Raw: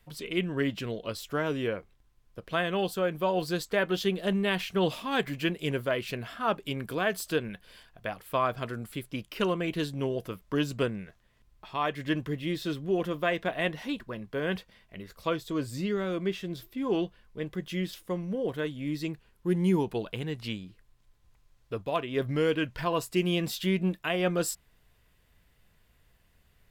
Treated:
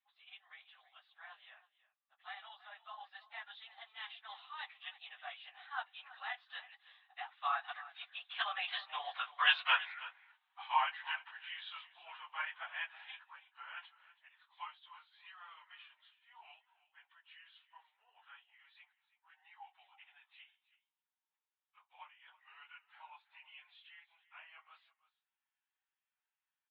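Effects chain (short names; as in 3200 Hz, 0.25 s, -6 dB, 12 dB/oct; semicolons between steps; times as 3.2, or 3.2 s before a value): phase scrambler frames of 50 ms; Doppler pass-by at 9.56, 37 m/s, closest 13 m; on a send: echo 0.325 s -17.5 dB; on the sum: wow and flutter 25 cents; Chebyshev band-pass 760–3800 Hz, order 5; gain +10 dB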